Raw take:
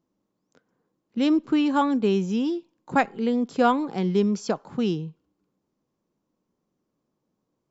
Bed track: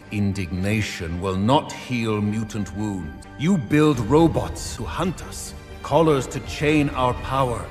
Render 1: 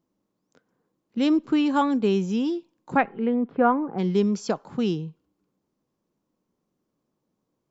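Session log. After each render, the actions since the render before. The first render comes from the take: 2.95–3.98 s: low-pass 3.1 kHz -> 1.5 kHz 24 dB/octave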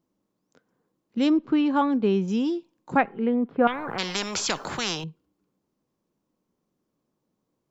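1.30–2.28 s: distance through air 170 m; 3.67–5.04 s: spectrum-flattening compressor 4:1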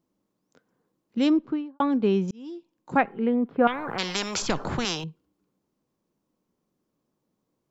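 1.31–1.80 s: studio fade out; 2.31–3.03 s: fade in; 4.42–4.85 s: tilt EQ -3 dB/octave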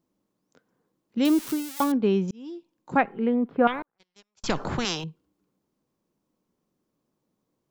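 1.25–1.92 s: zero-crossing glitches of -21.5 dBFS; 3.82–4.44 s: gate -24 dBFS, range -52 dB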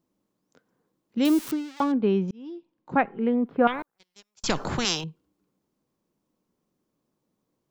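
1.51–3.26 s: distance through air 160 m; 3.79–5.01 s: treble shelf 3.9 kHz +7.5 dB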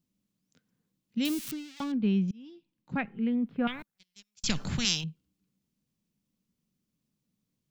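FFT filter 210 Hz 0 dB, 340 Hz -13 dB, 1 kHz -15 dB, 2.6 kHz -1 dB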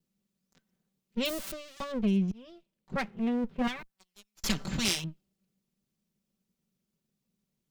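comb filter that takes the minimum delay 5.2 ms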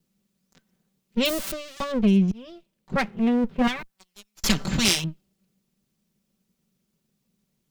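trim +8 dB

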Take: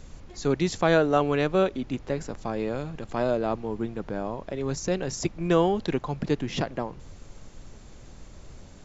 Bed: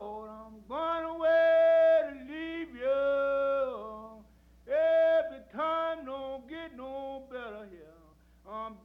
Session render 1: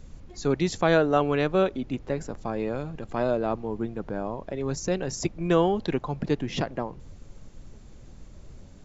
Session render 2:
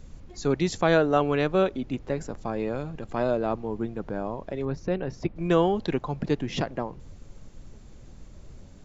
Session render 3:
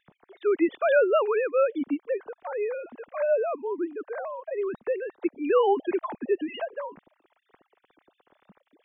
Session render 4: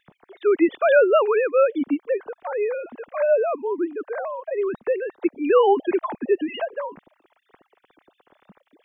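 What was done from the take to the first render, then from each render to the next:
noise reduction 6 dB, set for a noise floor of -47 dBFS
4.65–5.36 s: distance through air 290 m
formants replaced by sine waves; wow and flutter 21 cents
trim +5 dB

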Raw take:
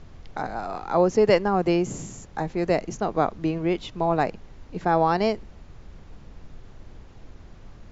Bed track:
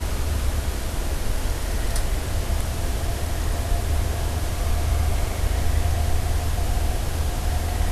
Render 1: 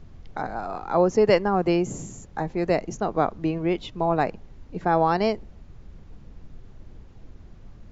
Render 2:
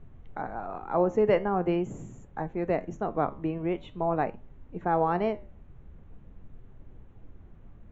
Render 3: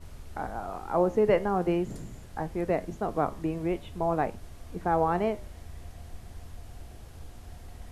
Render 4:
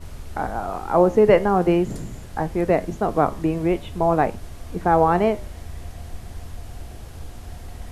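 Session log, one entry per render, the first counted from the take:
noise reduction 6 dB, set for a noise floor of -47 dBFS
boxcar filter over 9 samples; flange 0.44 Hz, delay 7 ms, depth 8.1 ms, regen +80%
add bed track -23 dB
trim +8.5 dB

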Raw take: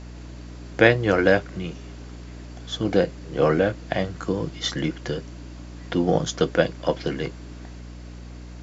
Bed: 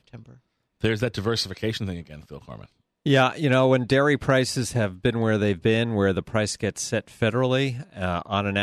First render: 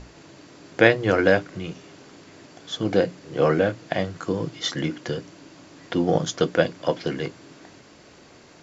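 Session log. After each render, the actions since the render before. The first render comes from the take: hum notches 60/120/180/240/300 Hz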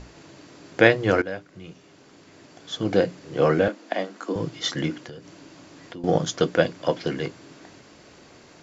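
1.22–2.99 s: fade in, from -17 dB; 3.68–4.36 s: rippled Chebyshev high-pass 200 Hz, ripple 3 dB; 5.00–6.04 s: compression 3:1, threshold -40 dBFS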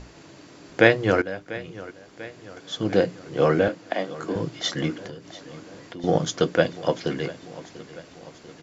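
feedback delay 692 ms, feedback 58%, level -17.5 dB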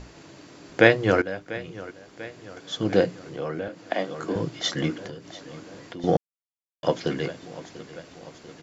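3.24–3.82 s: compression 2:1, threshold -36 dBFS; 6.17–6.83 s: mute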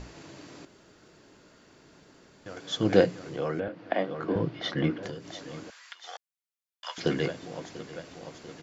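0.65–2.46 s: room tone; 3.60–5.03 s: distance through air 270 m; 5.70–6.98 s: high-pass 1.2 kHz 24 dB/octave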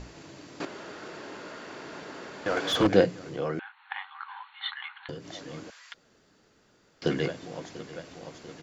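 0.60–2.87 s: overdrive pedal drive 27 dB, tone 1.6 kHz, clips at -12 dBFS; 3.59–5.09 s: brick-wall FIR band-pass 770–4400 Hz; 5.94–7.02 s: room tone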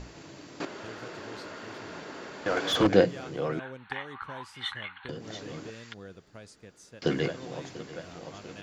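add bed -24.5 dB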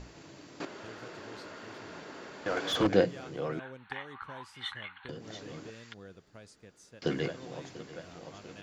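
trim -4 dB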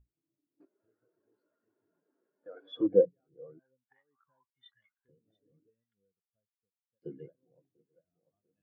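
in parallel at -3 dB: compression, threshold -41 dBFS, peak gain reduction 21 dB; on the sum: spectral contrast expander 2.5:1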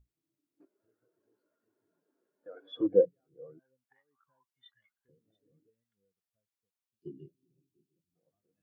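6.88–8.16 s: time-frequency box 410–2300 Hz -28 dB; dynamic bell 190 Hz, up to -3 dB, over -46 dBFS, Q 1.4

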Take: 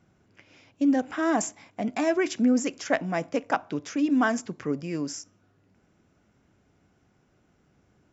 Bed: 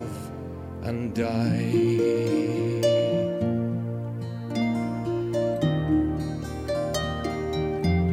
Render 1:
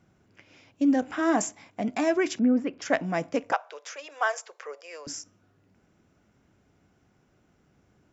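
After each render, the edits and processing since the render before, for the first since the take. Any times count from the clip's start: 1.00–1.45 s: doubling 21 ms -12.5 dB; 2.39–2.82 s: distance through air 430 m; 3.52–5.07 s: elliptic high-pass 490 Hz, stop band 50 dB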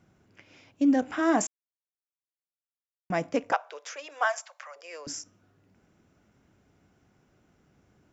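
1.47–3.10 s: mute; 4.24–4.76 s: steep high-pass 560 Hz 96 dB/octave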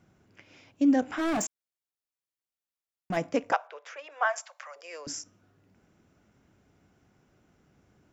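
1.13–3.17 s: hard clipper -25.5 dBFS; 3.67–4.36 s: three-band isolator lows -15 dB, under 390 Hz, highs -14 dB, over 3 kHz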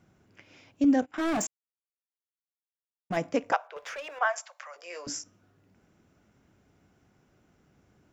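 0.84–3.15 s: gate -36 dBFS, range -24 dB; 3.76–4.19 s: waveshaping leveller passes 2; 4.72–5.18 s: doubling 17 ms -4.5 dB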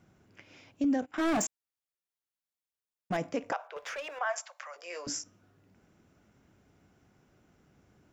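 peak limiter -22 dBFS, peak gain reduction 11 dB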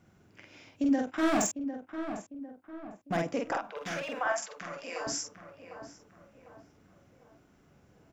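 doubling 47 ms -2.5 dB; on a send: filtered feedback delay 751 ms, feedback 44%, low-pass 1.6 kHz, level -9 dB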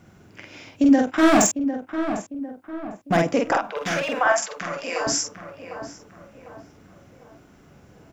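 trim +11 dB

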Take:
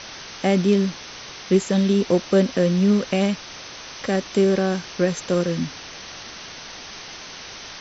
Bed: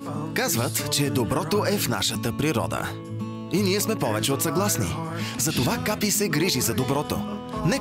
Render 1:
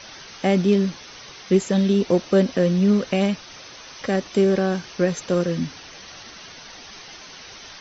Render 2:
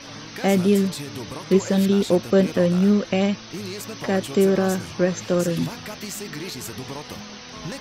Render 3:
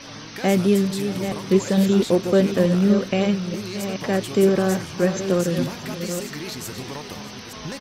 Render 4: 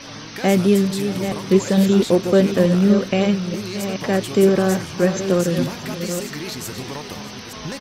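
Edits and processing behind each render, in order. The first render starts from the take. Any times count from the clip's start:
noise reduction 7 dB, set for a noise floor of -38 dBFS
add bed -10.5 dB
chunks repeated in reverse 443 ms, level -8.5 dB; delay 631 ms -18 dB
trim +2.5 dB

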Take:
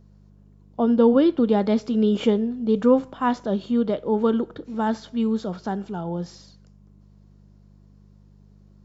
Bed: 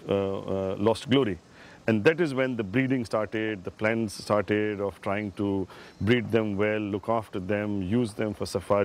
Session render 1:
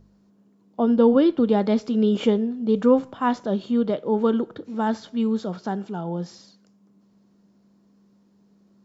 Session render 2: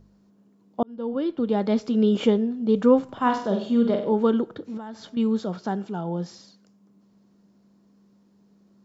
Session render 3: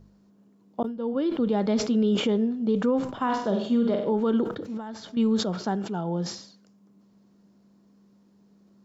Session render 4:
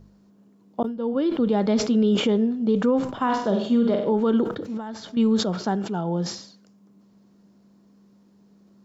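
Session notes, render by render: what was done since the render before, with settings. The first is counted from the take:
de-hum 50 Hz, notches 3
0.83–1.90 s: fade in; 3.04–4.13 s: flutter echo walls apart 8.1 m, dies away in 0.5 s; 4.77–5.17 s: compression 5:1, threshold -34 dBFS
peak limiter -15.5 dBFS, peak gain reduction 9.5 dB; decay stretcher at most 93 dB/s
trim +3 dB

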